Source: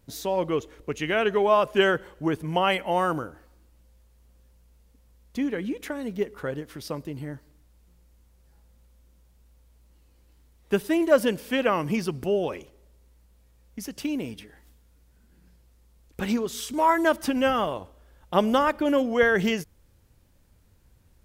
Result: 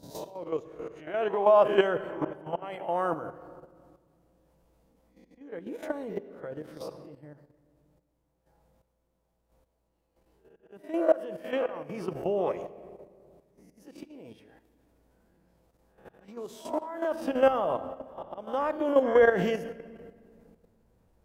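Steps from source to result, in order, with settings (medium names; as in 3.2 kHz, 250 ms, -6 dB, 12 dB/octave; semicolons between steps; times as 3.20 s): reverse spectral sustain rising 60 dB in 0.44 s; slow attack 712 ms; reverberation RT60 1.9 s, pre-delay 6 ms, DRR 9.5 dB; 7.15–10.93 s: tremolo saw up 1.2 Hz, depth 60%; peaking EQ 680 Hz +14 dB 2 oct; level held to a coarse grid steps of 10 dB; bass shelf 490 Hz +4 dB; trim -9 dB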